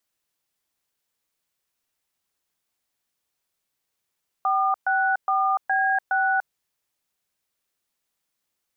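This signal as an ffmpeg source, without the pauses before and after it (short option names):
-f lavfi -i "aevalsrc='0.0841*clip(min(mod(t,0.415),0.292-mod(t,0.415))/0.002,0,1)*(eq(floor(t/0.415),0)*(sin(2*PI*770*mod(t,0.415))+sin(2*PI*1209*mod(t,0.415)))+eq(floor(t/0.415),1)*(sin(2*PI*770*mod(t,0.415))+sin(2*PI*1477*mod(t,0.415)))+eq(floor(t/0.415),2)*(sin(2*PI*770*mod(t,0.415))+sin(2*PI*1209*mod(t,0.415)))+eq(floor(t/0.415),3)*(sin(2*PI*770*mod(t,0.415))+sin(2*PI*1633*mod(t,0.415)))+eq(floor(t/0.415),4)*(sin(2*PI*770*mod(t,0.415))+sin(2*PI*1477*mod(t,0.415))))':d=2.075:s=44100"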